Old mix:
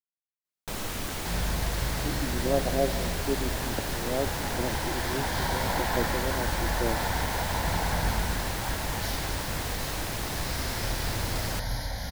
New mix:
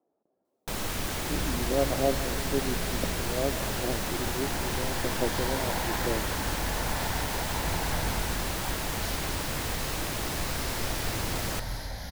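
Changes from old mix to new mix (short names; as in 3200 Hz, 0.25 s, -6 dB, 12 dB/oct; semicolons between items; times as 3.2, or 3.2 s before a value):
speech: entry -0.75 s; first sound: send on; second sound -4.0 dB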